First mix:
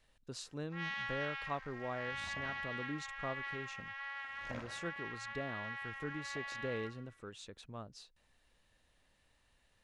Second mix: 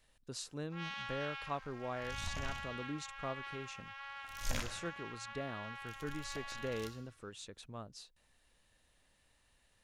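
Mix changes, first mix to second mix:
first sound: add parametric band 1,900 Hz −11 dB 0.24 octaves
second sound: remove resonant band-pass 460 Hz, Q 0.66
master: add high-shelf EQ 8,700 Hz +10.5 dB

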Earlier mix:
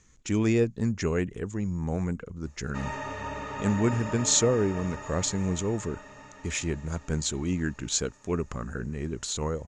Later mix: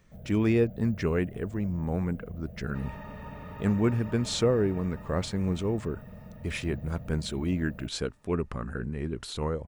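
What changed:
first sound: unmuted
second sound −10.0 dB
master: remove low-pass with resonance 6,800 Hz, resonance Q 9.2

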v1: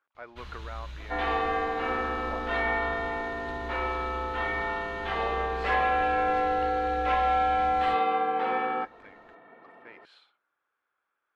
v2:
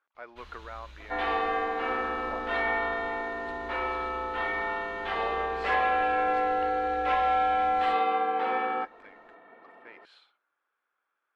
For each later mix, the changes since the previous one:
first sound −4.5 dB
master: add parametric band 110 Hz −9 dB 1.6 octaves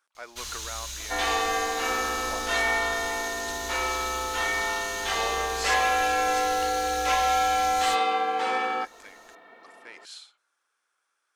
first sound +5.0 dB
second sound: send −7.0 dB
master: remove high-frequency loss of the air 490 metres

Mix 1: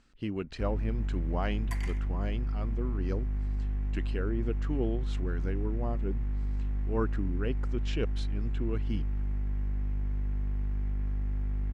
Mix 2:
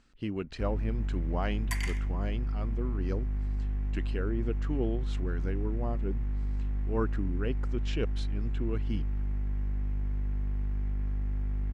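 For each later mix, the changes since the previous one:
second sound: add tilt shelving filter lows −9.5 dB, about 750 Hz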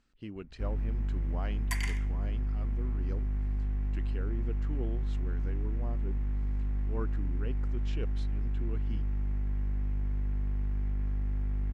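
speech −8.0 dB

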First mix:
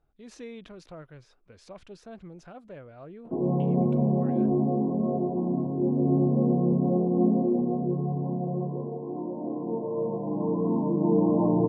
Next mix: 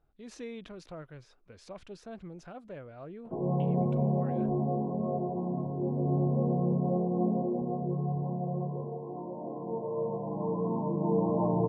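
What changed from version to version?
background: add parametric band 280 Hz −12 dB 0.82 octaves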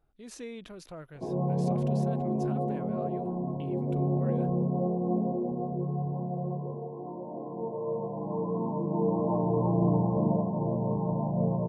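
background: entry −2.10 s
master: remove high-frequency loss of the air 76 metres

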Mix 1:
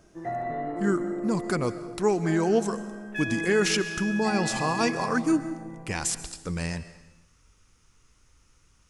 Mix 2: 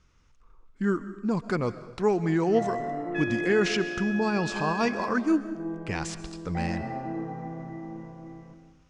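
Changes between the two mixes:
first sound: entry +2.30 s
master: add high-frequency loss of the air 130 metres

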